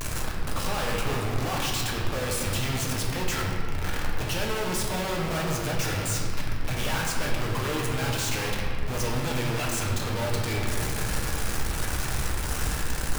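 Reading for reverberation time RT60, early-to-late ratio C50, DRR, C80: 2.1 s, 1.0 dB, −2.5 dB, 2.5 dB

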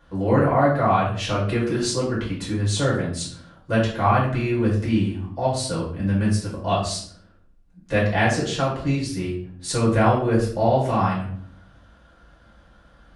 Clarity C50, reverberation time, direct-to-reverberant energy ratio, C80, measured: 5.0 dB, 0.60 s, −7.5 dB, 8.5 dB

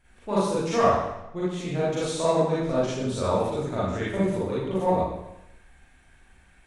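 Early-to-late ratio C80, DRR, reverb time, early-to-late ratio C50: 3.0 dB, −9.5 dB, 0.85 s, −3.5 dB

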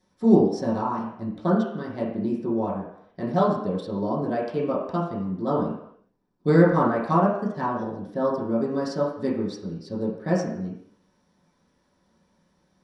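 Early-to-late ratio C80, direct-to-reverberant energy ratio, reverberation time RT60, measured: 6.5 dB, −8.5 dB, 0.70 s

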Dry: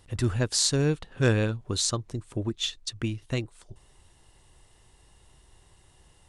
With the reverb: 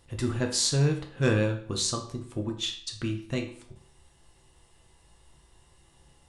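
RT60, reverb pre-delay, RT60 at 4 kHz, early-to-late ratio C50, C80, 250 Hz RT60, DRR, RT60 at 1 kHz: 0.55 s, 6 ms, 0.45 s, 9.0 dB, 12.5 dB, 0.55 s, 2.0 dB, 0.55 s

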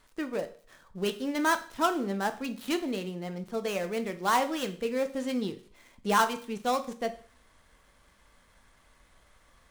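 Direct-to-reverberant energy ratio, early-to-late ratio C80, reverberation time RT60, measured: 8.0 dB, 18.5 dB, 0.45 s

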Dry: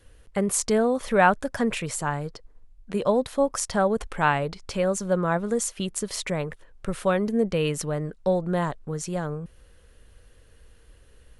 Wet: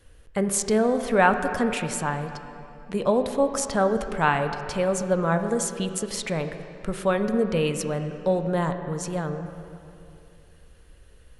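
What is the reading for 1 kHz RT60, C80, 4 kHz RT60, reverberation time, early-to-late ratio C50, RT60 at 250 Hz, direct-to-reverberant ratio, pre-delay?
2.7 s, 9.0 dB, 2.1 s, 2.7 s, 8.0 dB, 2.8 s, 7.0 dB, 14 ms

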